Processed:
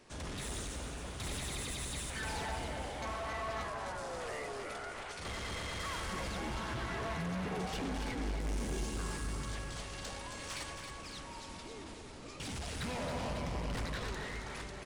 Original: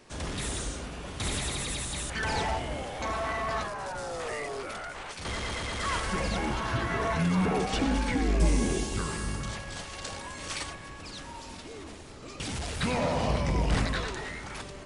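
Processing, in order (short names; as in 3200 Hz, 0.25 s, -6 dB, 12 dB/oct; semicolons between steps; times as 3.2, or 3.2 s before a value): soft clip -31 dBFS, distortion -8 dB; feedback echo 0.272 s, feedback 55%, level -7 dB; gain -5 dB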